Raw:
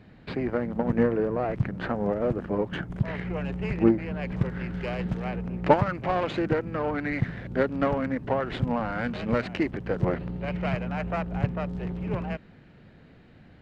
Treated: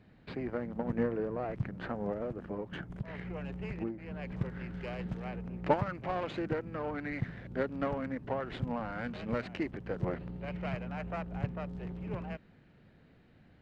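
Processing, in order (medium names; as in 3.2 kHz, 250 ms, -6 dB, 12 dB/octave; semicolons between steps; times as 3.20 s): 2.21–4.28 s: compression 6:1, threshold -25 dBFS, peak gain reduction 11 dB; trim -8.5 dB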